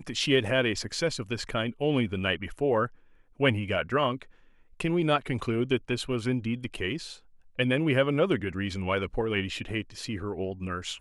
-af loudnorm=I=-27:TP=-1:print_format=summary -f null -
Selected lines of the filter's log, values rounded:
Input Integrated:    -28.9 LUFS
Input True Peak:     -10.7 dBTP
Input LRA:             2.7 LU
Input Threshold:     -39.2 LUFS